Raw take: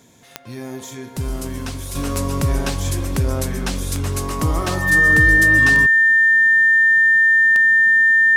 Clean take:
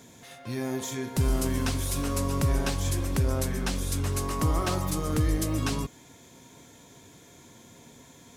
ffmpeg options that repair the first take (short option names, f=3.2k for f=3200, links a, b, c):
-af "adeclick=t=4,bandreject=f=1.8k:w=30,asetnsamples=n=441:p=0,asendcmd='1.95 volume volume -6dB',volume=0dB"